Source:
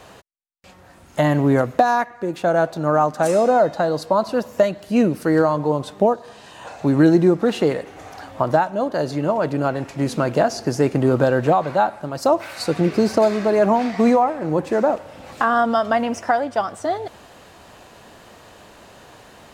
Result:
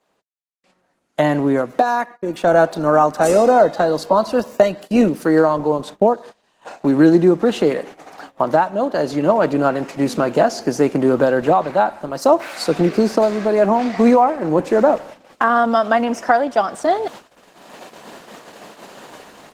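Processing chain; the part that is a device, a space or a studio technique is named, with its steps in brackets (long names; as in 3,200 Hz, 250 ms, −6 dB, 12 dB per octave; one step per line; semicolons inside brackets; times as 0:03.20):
video call (high-pass filter 170 Hz 24 dB per octave; automatic gain control gain up to 12.5 dB; noise gate −32 dBFS, range −21 dB; level −1 dB; Opus 16 kbit/s 48,000 Hz)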